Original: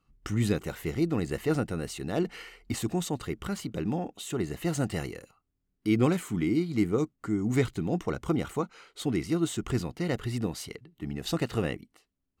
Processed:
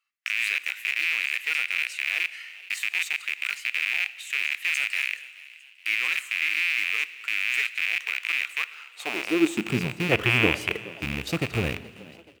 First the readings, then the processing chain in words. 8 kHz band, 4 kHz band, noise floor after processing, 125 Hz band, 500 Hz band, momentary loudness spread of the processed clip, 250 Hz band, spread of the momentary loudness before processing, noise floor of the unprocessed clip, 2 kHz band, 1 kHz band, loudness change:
+1.0 dB, +11.5 dB, −51 dBFS, −4.0 dB, −3.0 dB, 9 LU, −4.0 dB, 9 LU, −79 dBFS, +18.0 dB, +0.5 dB, +5.0 dB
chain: loose part that buzzes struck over −39 dBFS, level −18 dBFS
gain on a spectral selection 0:10.12–0:10.89, 290–3,500 Hz +10 dB
in parallel at −9.5 dB: bit reduction 5 bits
on the sum: high-pass filter sweep 2,000 Hz → 74 Hz, 0:08.56–0:10.15
on a send: echo with shifted repeats 426 ms, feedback 49%, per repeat +85 Hz, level −20 dB
on the sum: four-comb reverb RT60 1.7 s, combs from 26 ms, DRR 16 dB
level −2.5 dB

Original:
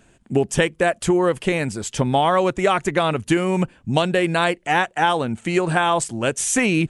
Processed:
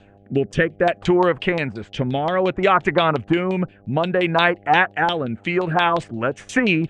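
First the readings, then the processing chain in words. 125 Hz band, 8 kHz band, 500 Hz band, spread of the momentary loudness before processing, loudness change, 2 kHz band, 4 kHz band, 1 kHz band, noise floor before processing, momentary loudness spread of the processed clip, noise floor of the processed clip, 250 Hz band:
−0.5 dB, below −15 dB, 0.0 dB, 5 LU, +0.5 dB, +2.0 dB, 0.0 dB, +0.5 dB, −57 dBFS, 8 LU, −50 dBFS, 0.0 dB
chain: hum with harmonics 100 Hz, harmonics 8, −50 dBFS −3 dB per octave
auto-filter low-pass saw down 5.7 Hz 870–4,100 Hz
rotating-speaker cabinet horn 0.6 Hz, later 6 Hz, at 0:05.16
level +1 dB

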